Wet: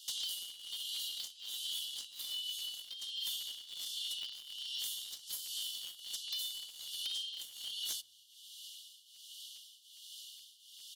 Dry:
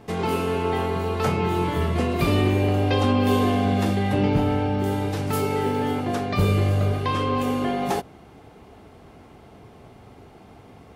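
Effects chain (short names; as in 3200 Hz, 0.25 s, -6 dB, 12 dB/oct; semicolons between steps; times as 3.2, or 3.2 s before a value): Chebyshev high-pass 2900 Hz, order 10; comb 2 ms, depth 36%; compressor 12:1, threshold -52 dBFS, peak gain reduction 20.5 dB; in parallel at -5.5 dB: requantised 8-bit, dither none; on the sum: soft clip -36.5 dBFS, distortion -26 dB; tremolo triangle 1.3 Hz, depth 85%; sine folder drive 7 dB, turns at -38 dBFS; on a send at -17 dB: reverb RT60 0.55 s, pre-delay 4 ms; on the sum: crackling interface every 0.41 s, samples 512, repeat, from 0.53; gain +6.5 dB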